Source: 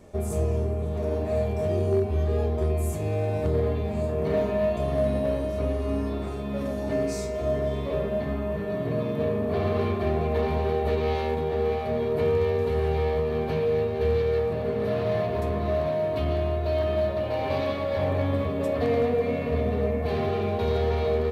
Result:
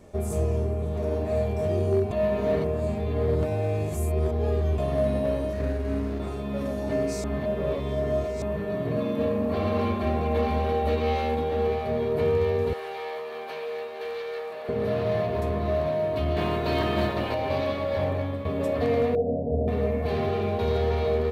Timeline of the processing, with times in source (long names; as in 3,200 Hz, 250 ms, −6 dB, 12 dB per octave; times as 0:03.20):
0:02.11–0:04.78: reverse
0:05.53–0:06.20: running median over 41 samples
0:07.24–0:08.42: reverse
0:08.96–0:11.67: comb filter 3.7 ms, depth 61%
0:12.73–0:14.69: high-pass filter 760 Hz
0:16.36–0:17.33: ceiling on every frequency bin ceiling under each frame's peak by 17 dB
0:17.99–0:18.45: fade out, to −8.5 dB
0:19.15–0:19.68: Butterworth low-pass 830 Hz 96 dB per octave